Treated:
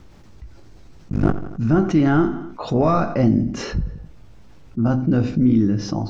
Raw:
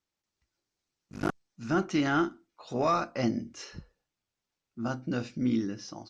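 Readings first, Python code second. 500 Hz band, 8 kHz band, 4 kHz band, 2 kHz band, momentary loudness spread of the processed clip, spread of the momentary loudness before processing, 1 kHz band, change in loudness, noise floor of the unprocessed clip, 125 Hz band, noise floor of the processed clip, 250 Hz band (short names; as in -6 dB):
+10.0 dB, n/a, +4.5 dB, +4.0 dB, 11 LU, 17 LU, +6.5 dB, +11.0 dB, under -85 dBFS, +17.5 dB, -44 dBFS, +12.5 dB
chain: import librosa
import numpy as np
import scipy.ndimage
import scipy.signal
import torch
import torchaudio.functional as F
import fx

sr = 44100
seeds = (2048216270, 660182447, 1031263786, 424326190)

y = fx.tilt_eq(x, sr, slope=-4.0)
y = fx.doubler(y, sr, ms=19.0, db=-9)
y = fx.echo_feedback(y, sr, ms=86, feedback_pct=38, wet_db=-20.0)
y = fx.env_flatten(y, sr, amount_pct=50)
y = y * librosa.db_to_amplitude(2.5)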